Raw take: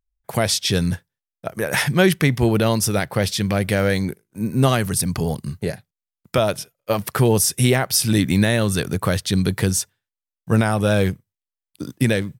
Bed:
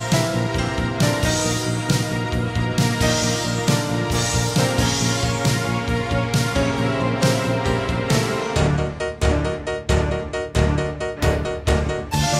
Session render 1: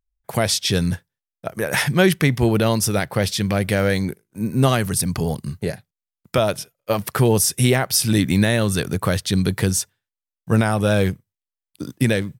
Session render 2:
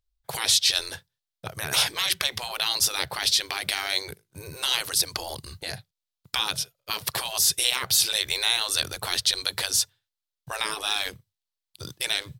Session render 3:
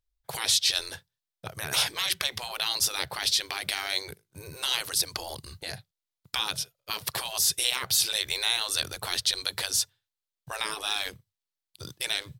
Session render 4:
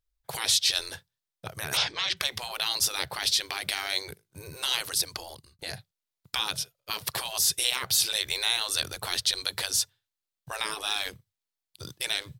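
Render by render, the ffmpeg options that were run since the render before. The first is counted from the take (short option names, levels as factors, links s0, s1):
-af anull
-af "afftfilt=real='re*lt(hypot(re,im),0.2)':imag='im*lt(hypot(re,im),0.2)':win_size=1024:overlap=0.75,equalizer=f=125:t=o:w=1:g=4,equalizer=f=250:t=o:w=1:g=-12,equalizer=f=2000:t=o:w=1:g=-3,equalizer=f=4000:t=o:w=1:g=9"
-af "volume=0.708"
-filter_complex "[0:a]asettb=1/sr,asplit=3[s0][s1][s2];[s0]atrim=end=1.774[s3];[s1]atrim=start=1.77:end=2.17,asetpts=PTS-STARTPTS,afade=t=in:d=0.004:c=qsin,afade=t=out:st=0.396:d=0.004:c=qsin,lowpass=f=5900:w=0.5412,lowpass=f=5900:w=1.3066[s4];[s2]atrim=start=2.166[s5];[s3][s4]acrossfade=d=0.004:c1=hsin:c2=qsin[s6];[s6][s5]acrossfade=d=0.004:c1=qsin:c2=hsin,asplit=2[s7][s8];[s7]atrim=end=5.59,asetpts=PTS-STARTPTS,afade=t=out:st=4.77:d=0.82:c=qsin[s9];[s8]atrim=start=5.59,asetpts=PTS-STARTPTS,afade=t=in:d=0.004:c=hsin[s10];[s9][s10]concat=n=2:v=0:a=1"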